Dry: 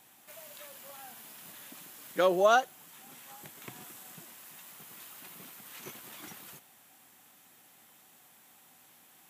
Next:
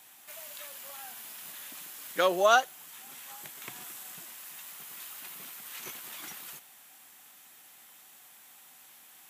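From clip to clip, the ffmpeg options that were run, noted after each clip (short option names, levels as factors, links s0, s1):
-af "tiltshelf=f=650:g=-5.5"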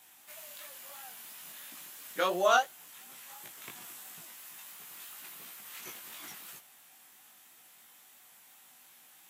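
-af "flanger=delay=16.5:depth=4.4:speed=2.9"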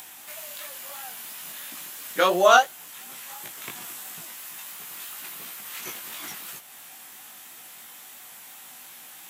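-af "acompressor=mode=upward:threshold=0.00447:ratio=2.5,volume=2.82"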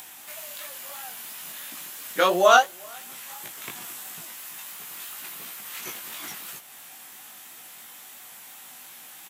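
-filter_complex "[0:a]asplit=2[s0][s1];[s1]adelay=384.8,volume=0.0355,highshelf=f=4000:g=-8.66[s2];[s0][s2]amix=inputs=2:normalize=0"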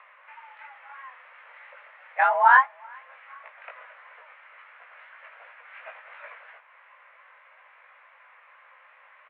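-af "highpass=f=260:t=q:w=0.5412,highpass=f=260:t=q:w=1.307,lowpass=f=2000:t=q:w=0.5176,lowpass=f=2000:t=q:w=0.7071,lowpass=f=2000:t=q:w=1.932,afreqshift=280"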